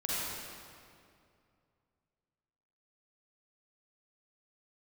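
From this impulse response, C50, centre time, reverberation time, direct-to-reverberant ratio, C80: -6.5 dB, 172 ms, 2.4 s, -8.0 dB, -3.5 dB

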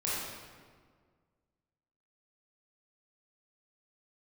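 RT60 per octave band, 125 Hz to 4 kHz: 2.1 s, 2.0 s, 1.9 s, 1.7 s, 1.4 s, 1.1 s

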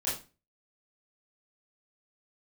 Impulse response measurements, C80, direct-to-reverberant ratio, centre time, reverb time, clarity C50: 11.5 dB, -10.0 dB, 39 ms, 0.30 s, 5.0 dB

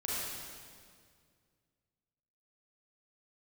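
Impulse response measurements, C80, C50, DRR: -1.5 dB, -4.5 dB, -7.5 dB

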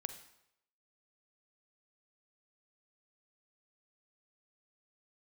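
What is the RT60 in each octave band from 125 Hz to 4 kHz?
0.75 s, 0.70 s, 0.80 s, 0.80 s, 0.75 s, 0.70 s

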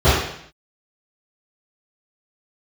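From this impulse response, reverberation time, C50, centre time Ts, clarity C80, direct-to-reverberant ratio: 0.65 s, 0.0 dB, 65 ms, 3.5 dB, -19.0 dB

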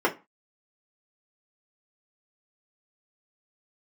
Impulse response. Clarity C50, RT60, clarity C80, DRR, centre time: 16.5 dB, 0.25 s, 24.0 dB, -2.0 dB, 11 ms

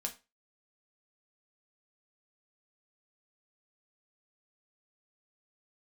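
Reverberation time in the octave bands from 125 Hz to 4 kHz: 0.25 s, 0.25 s, 0.25 s, 0.25 s, 0.25 s, 0.25 s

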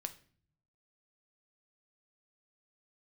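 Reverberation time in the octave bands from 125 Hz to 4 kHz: 1.2 s, 0.90 s, 0.55 s, 0.45 s, 0.45 s, 0.40 s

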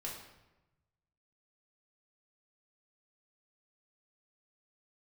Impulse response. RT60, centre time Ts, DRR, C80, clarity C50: 1.0 s, 45 ms, -4.0 dB, 6.5 dB, 3.5 dB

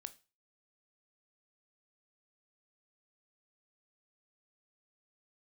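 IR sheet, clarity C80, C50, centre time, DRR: 24.0 dB, 18.5 dB, 4 ms, 11.5 dB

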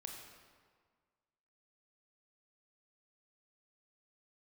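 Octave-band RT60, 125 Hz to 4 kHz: 1.7 s, 1.7 s, 1.7 s, 1.7 s, 1.4 s, 1.2 s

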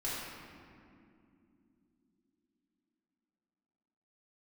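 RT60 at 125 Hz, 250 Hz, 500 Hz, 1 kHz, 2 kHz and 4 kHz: 3.8 s, 5.0 s, 3.6 s, 2.2 s, 2.0 s, 1.3 s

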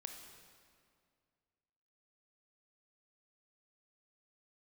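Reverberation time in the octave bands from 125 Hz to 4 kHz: 2.5 s, 2.4 s, 2.2 s, 2.1 s, 1.9 s, 1.7 s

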